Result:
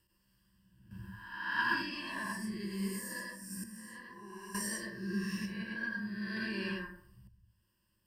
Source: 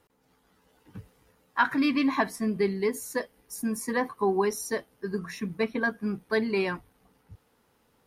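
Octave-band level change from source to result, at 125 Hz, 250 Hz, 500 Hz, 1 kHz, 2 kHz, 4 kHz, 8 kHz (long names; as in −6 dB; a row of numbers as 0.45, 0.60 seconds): −4.5, −10.0, −19.5, −11.0, −4.5, −3.5, −4.5 decibels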